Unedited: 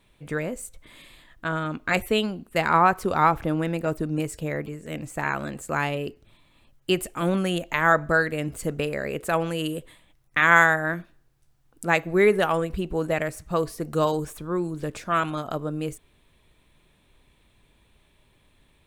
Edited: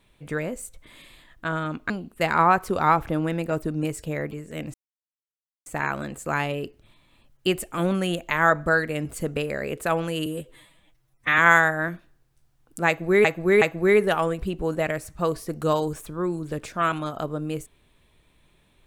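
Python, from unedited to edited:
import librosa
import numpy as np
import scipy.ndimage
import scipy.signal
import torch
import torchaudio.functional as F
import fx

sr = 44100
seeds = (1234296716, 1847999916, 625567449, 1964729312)

y = fx.edit(x, sr, fx.cut(start_s=1.9, length_s=0.35),
    fx.insert_silence(at_s=5.09, length_s=0.92),
    fx.stretch_span(start_s=9.69, length_s=0.75, factor=1.5),
    fx.repeat(start_s=11.93, length_s=0.37, count=3), tone=tone)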